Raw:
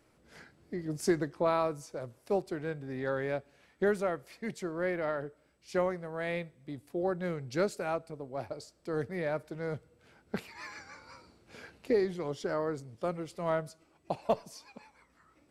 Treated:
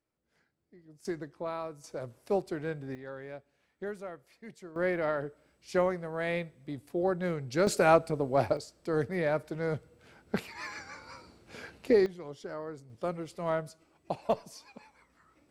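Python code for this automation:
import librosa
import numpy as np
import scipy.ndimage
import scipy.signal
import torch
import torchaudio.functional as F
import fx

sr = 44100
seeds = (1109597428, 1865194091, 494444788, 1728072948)

y = fx.gain(x, sr, db=fx.steps((0.0, -19.5), (1.05, -8.0), (1.84, 1.0), (2.95, -10.0), (4.76, 2.5), (7.67, 11.5), (8.57, 4.0), (12.06, -7.0), (12.9, 0.0)))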